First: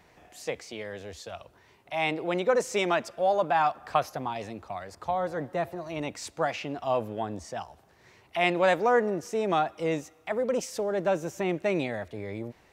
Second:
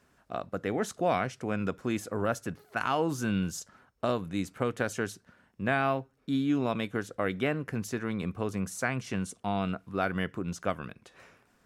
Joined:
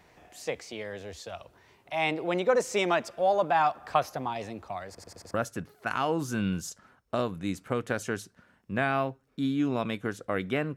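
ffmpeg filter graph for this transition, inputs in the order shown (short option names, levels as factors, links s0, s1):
-filter_complex "[0:a]apad=whole_dur=10.76,atrim=end=10.76,asplit=5[s0][s1][s2][s3][s4];[s0]atrim=end=4.982[s5];[s1]atrim=start=4.888:end=4.982[s6];[s2]atrim=start=4.888:end=4.982[s7];[s3]atrim=start=4.888:end=4.982[s8];[s4]atrim=start=4.888:end=4.982[s9];[1:a]atrim=start=2.238:end=7.66[s10];[s5][s6]acrossfade=d=0.004:c1=hsin:c2=hsin[s11];[s11][s7]acrossfade=d=0.004:c1=hsin:c2=hsin[s12];[s12][s8]acrossfade=d=0.004:c1=hsin:c2=hsin[s13];[s13][s9]acrossfade=d=0.004:c1=hsin:c2=hsin[s14];[s14][s10]acrossfade=d=0.004:c1=hsin:c2=hsin"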